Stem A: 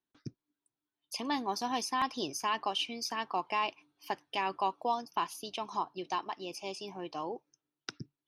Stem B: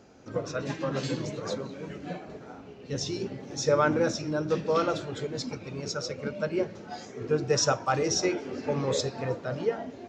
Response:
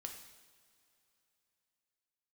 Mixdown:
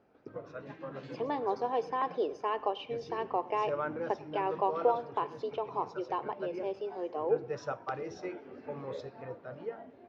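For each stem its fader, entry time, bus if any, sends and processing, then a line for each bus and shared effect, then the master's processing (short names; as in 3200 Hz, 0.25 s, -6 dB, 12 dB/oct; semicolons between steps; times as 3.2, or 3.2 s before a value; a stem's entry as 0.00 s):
-0.5 dB, 0.00 s, send -8 dB, echo send -20 dB, resonant high-pass 460 Hz, resonance Q 4.9
-4.0 dB, 0.00 s, no send, no echo send, low shelf 410 Hz -12 dB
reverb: on, pre-delay 3 ms
echo: echo 0.103 s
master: tape spacing loss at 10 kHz 43 dB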